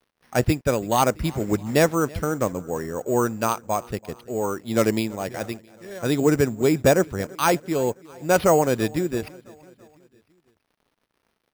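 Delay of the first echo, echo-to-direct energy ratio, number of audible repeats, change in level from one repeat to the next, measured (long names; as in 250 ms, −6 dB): 333 ms, −21.5 dB, 3, −5.0 dB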